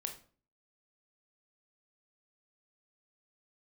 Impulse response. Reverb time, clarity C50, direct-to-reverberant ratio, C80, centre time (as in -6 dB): 0.45 s, 10.0 dB, 4.0 dB, 15.0 dB, 15 ms